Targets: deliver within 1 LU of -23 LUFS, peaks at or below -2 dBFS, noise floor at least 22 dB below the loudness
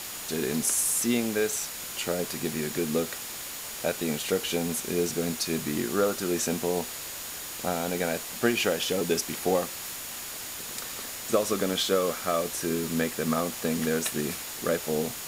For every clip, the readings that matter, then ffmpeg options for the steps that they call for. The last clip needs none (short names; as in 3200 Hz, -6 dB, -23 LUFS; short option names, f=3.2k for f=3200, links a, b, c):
steady tone 6900 Hz; tone level -46 dBFS; noise floor -38 dBFS; noise floor target -51 dBFS; loudness -28.5 LUFS; peak -10.5 dBFS; loudness target -23.0 LUFS
-> -af "bandreject=f=6.9k:w=30"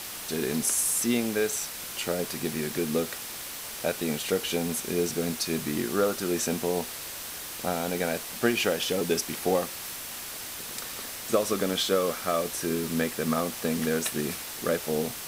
steady tone none; noise floor -38 dBFS; noise floor target -51 dBFS
-> -af "afftdn=nr=13:nf=-38"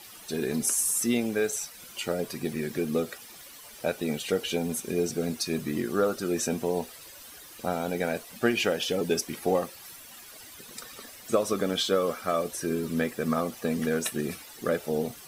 noise floor -48 dBFS; noise floor target -51 dBFS
-> -af "afftdn=nr=6:nf=-48"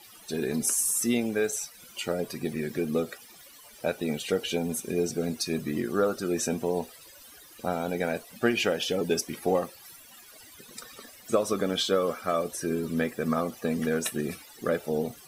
noise floor -51 dBFS; loudness -29.0 LUFS; peak -10.5 dBFS; loudness target -23.0 LUFS
-> -af "volume=6dB"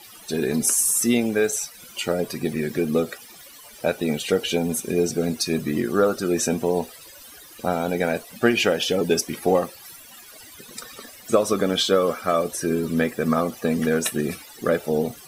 loudness -23.0 LUFS; peak -4.5 dBFS; noise floor -45 dBFS